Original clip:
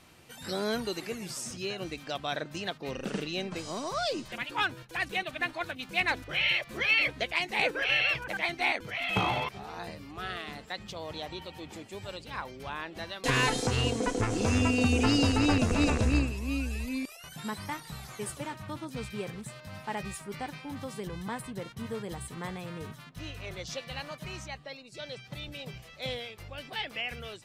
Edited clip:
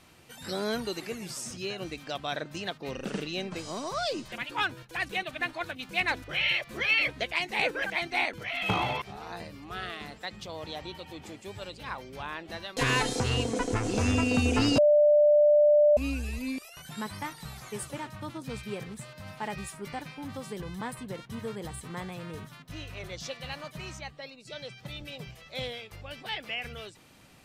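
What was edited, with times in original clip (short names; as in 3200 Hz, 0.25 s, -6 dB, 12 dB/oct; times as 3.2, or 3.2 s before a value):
7.84–8.31 cut
15.25–16.44 bleep 593 Hz -16.5 dBFS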